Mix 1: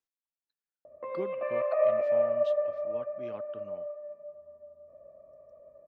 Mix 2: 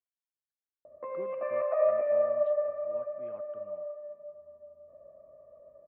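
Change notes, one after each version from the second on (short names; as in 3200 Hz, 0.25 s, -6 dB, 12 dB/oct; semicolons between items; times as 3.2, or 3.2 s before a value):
speech -7.5 dB; master: add Chebyshev low-pass 1600 Hz, order 2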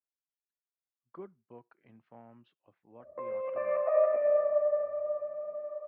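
background: entry +2.15 s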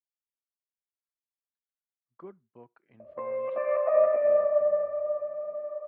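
speech: entry +1.05 s; background +3.5 dB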